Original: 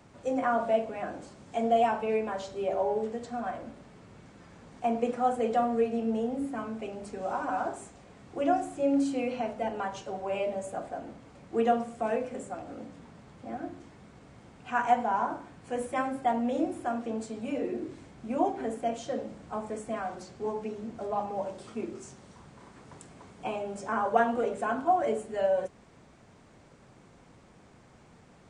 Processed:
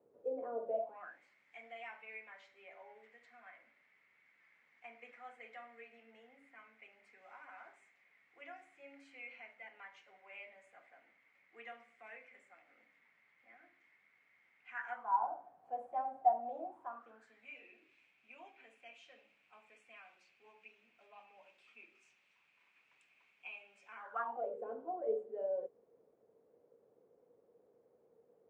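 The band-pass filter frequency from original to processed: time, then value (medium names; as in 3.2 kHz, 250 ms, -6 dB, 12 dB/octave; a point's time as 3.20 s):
band-pass filter, Q 8.5
0.70 s 460 Hz
1.20 s 2.1 kHz
14.73 s 2.1 kHz
15.29 s 740 Hz
16.62 s 740 Hz
17.58 s 2.5 kHz
23.93 s 2.5 kHz
24.57 s 470 Hz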